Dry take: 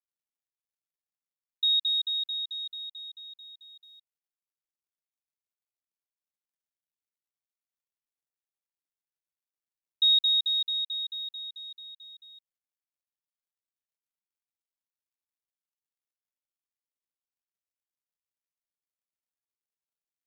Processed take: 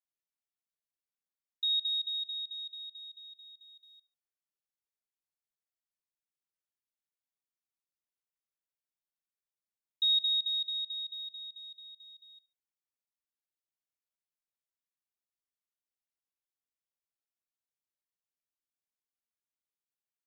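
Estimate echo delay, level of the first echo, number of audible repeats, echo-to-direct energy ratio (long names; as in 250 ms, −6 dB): 72 ms, −20.0 dB, 2, −19.5 dB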